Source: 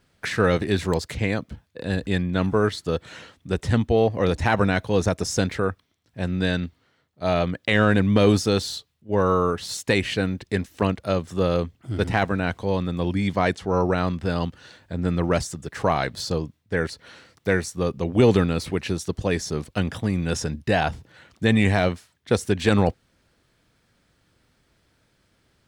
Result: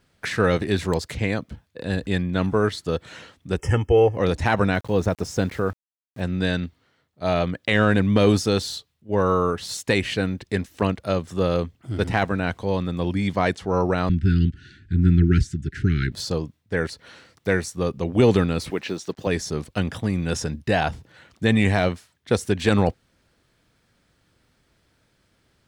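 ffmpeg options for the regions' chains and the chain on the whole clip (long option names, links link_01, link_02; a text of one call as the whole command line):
ffmpeg -i in.wav -filter_complex "[0:a]asettb=1/sr,asplit=3[link_01][link_02][link_03];[link_01]atrim=end=3.584[link_04];[link_02]atrim=start=3.58:end=4.17,asetpts=PTS-STARTPTS,afade=type=in:duration=0.004:curve=qsin,afade=type=out:start_time=0.586:duration=0.004:curve=qsin,asuperstop=centerf=4000:order=12:qfactor=2.4,aecho=1:1:2.3:0.65,atrim=end_sample=26019[link_05];[link_03]atrim=start=4.166[link_06];[link_04][link_05]acrossfade=duration=0.004:curve1=hsin:curve2=qsin[link_07];[link_07][link_06]acrossfade=duration=0.004:curve1=qsin:curve2=hsin,asettb=1/sr,asplit=3[link_08][link_09][link_10];[link_08]atrim=end=4.754[link_11];[link_09]atrim=start=4.75:end=6.21,asetpts=PTS-STARTPTS,afade=type=in:duration=0.004:curve=qsin,afade=type=out:start_time=1.456:duration=0.004:curve=qsin,highshelf=frequency=2700:gain=-8.5,aeval=exprs='val(0)*gte(abs(val(0)),0.0075)':channel_layout=same[link_12];[link_10]atrim=start=6.206[link_13];[link_11][link_12]acrossfade=duration=0.004:curve1=hsin:curve2=qsin[link_14];[link_14][link_13]acrossfade=duration=0.004:curve1=qsin:curve2=hsin,asettb=1/sr,asplit=3[link_15][link_16][link_17];[link_15]atrim=end=14.094[link_18];[link_16]atrim=start=14.09:end=16.12,asetpts=PTS-STARTPTS,afade=type=in:duration=0.004:curve=qsin,afade=type=out:start_time=2.026:duration=0.004:curve=qsin,asuperstop=centerf=740:order=20:qfactor=0.76,aemphasis=mode=reproduction:type=bsi[link_19];[link_17]atrim=start=16.116[link_20];[link_18][link_19]acrossfade=duration=0.004:curve1=hsin:curve2=qsin[link_21];[link_21][link_20]acrossfade=duration=0.004:curve1=qsin:curve2=hsin,asettb=1/sr,asplit=3[link_22][link_23][link_24];[link_22]atrim=end=18.704[link_25];[link_23]atrim=start=18.7:end=19.27,asetpts=PTS-STARTPTS,afade=type=in:duration=0.004:curve=qsin,afade=type=out:start_time=0.566:duration=0.004:curve=qsin,highpass=220,lowpass=5900,acrusher=bits=8:mix=0:aa=0.5[link_26];[link_24]atrim=start=19.266[link_27];[link_25][link_26]acrossfade=duration=0.004:curve1=hsin:curve2=qsin[link_28];[link_28][link_27]acrossfade=duration=0.004:curve1=qsin:curve2=hsin" out.wav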